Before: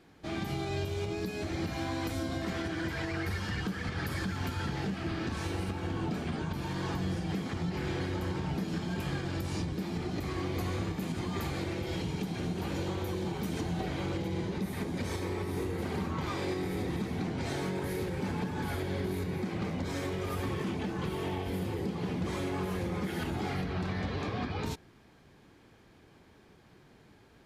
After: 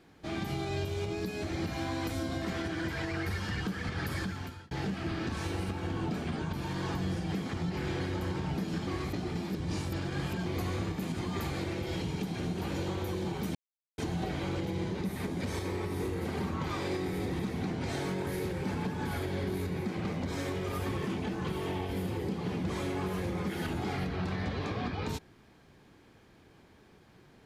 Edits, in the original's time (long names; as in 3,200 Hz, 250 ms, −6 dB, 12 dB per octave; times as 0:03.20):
0:04.19–0:04.71: fade out
0:08.87–0:10.46: reverse
0:13.55: splice in silence 0.43 s